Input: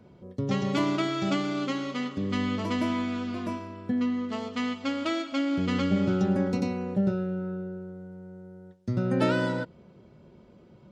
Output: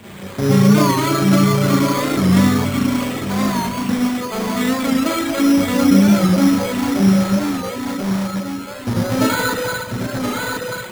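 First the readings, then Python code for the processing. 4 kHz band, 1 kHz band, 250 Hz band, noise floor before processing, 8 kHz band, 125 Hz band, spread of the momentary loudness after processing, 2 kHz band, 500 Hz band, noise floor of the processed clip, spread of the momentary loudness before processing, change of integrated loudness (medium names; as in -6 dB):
+12.0 dB, +13.0 dB, +12.5 dB, -55 dBFS, no reading, +13.0 dB, 11 LU, +12.0 dB, +10.5 dB, -30 dBFS, 15 LU, +11.5 dB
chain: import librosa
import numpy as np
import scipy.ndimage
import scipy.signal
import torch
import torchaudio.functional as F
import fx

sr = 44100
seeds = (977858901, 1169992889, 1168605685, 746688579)

p1 = x + 0.5 * 10.0 ** (-25.5 / 20.0) * np.diff(np.sign(x), prepend=np.sign(x[:1]))
p2 = fx.bass_treble(p1, sr, bass_db=0, treble_db=8)
p3 = fx.rev_spring(p2, sr, rt60_s=2.3, pass_ms=(31, 36, 50), chirp_ms=25, drr_db=-5.5)
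p4 = fx.spec_erase(p3, sr, start_s=2.65, length_s=0.65, low_hz=280.0, high_hz=2000.0)
p5 = fx.echo_feedback(p4, sr, ms=1037, feedback_pct=34, wet_db=-6.5)
p6 = fx.dereverb_blind(p5, sr, rt60_s=1.1)
p7 = (np.mod(10.0 ** (26.5 / 20.0) * p6 + 1.0, 2.0) - 1.0) / 10.0 ** (26.5 / 20.0)
p8 = p6 + (p7 * librosa.db_to_amplitude(-4.0))
p9 = np.repeat(scipy.signal.resample_poly(p8, 1, 8), 8)[:len(p8)]
p10 = fx.record_warp(p9, sr, rpm=45.0, depth_cents=100.0)
y = p10 * librosa.db_to_amplitude(7.0)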